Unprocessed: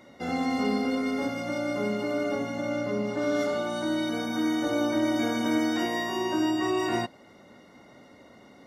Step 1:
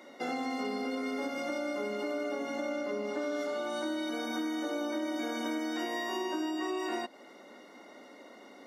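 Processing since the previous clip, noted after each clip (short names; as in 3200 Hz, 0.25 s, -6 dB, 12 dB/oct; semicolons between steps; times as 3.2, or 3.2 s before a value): HPF 260 Hz 24 dB/oct; compressor, threshold -33 dBFS, peak gain reduction 10.5 dB; gain +1.5 dB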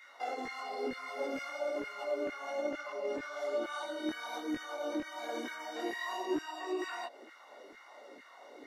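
limiter -28.5 dBFS, peak gain reduction 5 dB; LFO high-pass saw down 2.2 Hz 290–1800 Hz; chorus voices 4, 1 Hz, delay 21 ms, depth 4.6 ms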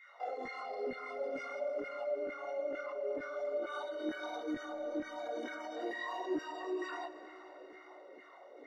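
formant sharpening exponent 1.5; reverb RT60 5.0 s, pre-delay 80 ms, DRR 11 dB; gain -2 dB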